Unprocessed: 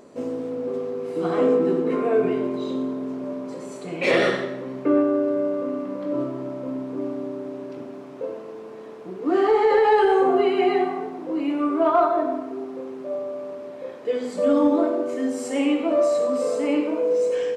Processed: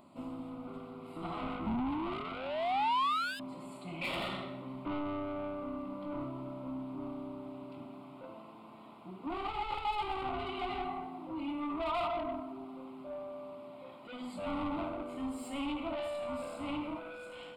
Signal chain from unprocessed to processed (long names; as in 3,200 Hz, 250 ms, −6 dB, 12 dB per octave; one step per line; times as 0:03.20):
sound drawn into the spectrogram rise, 0:01.66–0:03.40, 210–1,700 Hz −17 dBFS
soft clipping −23.5 dBFS, distortion −7 dB
phaser with its sweep stopped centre 1,700 Hz, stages 6
level −4.5 dB